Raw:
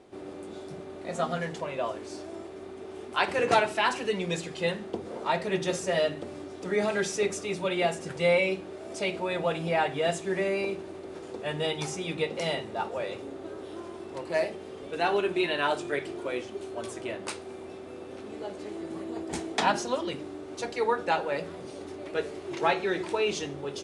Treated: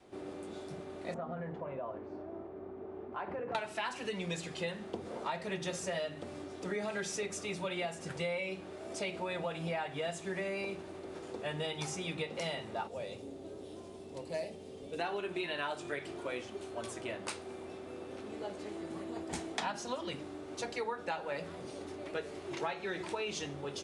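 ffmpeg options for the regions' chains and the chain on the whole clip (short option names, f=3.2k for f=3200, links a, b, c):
-filter_complex "[0:a]asettb=1/sr,asplit=3[a][b][c];[a]atrim=end=1.144[d];[b]atrim=start=1.14:end=3.55,asetpts=PTS-STARTPTS,afade=t=in:d=0.004:c=qsin,afade=t=out:st=2.406:d=0.004:c=qsin,lowpass=1.1k,acompressor=threshold=-32dB:ratio=5:attack=3.2:release=140:knee=1:detection=peak[e];[c]atrim=start=3.546[f];[d][e]acrossfade=d=0.004:c1=hsin:c2=qsin[g];[g][f]acrossfade=d=0.004:c1=qsin:c2=hsin,asettb=1/sr,asplit=3[h][i][j];[h]atrim=end=12.874[k];[i]atrim=start=12.87:end=14.99,asetpts=PTS-STARTPTS,afade=t=in:d=0.004:c=qsin,afade=t=out:st=2.116:d=0.004:c=qsin,equalizer=f=1.4k:t=o:w=1.7:g=-13,bandreject=f=350:w=5.8[l];[j]atrim=start=14.986[m];[k][l]acrossfade=d=0.004:c1=hsin:c2=qsin[n];[n][m]acrossfade=d=0.004:c1=qsin:c2=hsin,adynamicequalizer=threshold=0.00794:dfrequency=380:dqfactor=1.6:tfrequency=380:tqfactor=1.6:attack=5:release=100:ratio=0.375:range=2.5:mode=cutabove:tftype=bell,acompressor=threshold=-31dB:ratio=6,volume=-2.5dB"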